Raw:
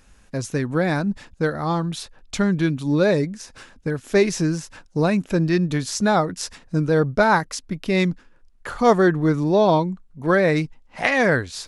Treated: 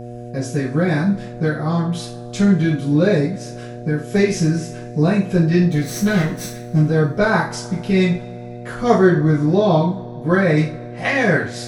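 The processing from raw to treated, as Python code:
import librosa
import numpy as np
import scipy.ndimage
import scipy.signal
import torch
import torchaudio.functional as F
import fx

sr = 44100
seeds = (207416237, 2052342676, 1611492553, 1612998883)

y = fx.lower_of_two(x, sr, delay_ms=0.49, at=(5.6, 6.84))
y = fx.rev_double_slope(y, sr, seeds[0], early_s=0.37, late_s=2.9, knee_db=-27, drr_db=-8.5)
y = fx.dmg_buzz(y, sr, base_hz=120.0, harmonics=6, level_db=-24.0, tilt_db=-3, odd_only=False)
y = y * 10.0 ** (-8.5 / 20.0)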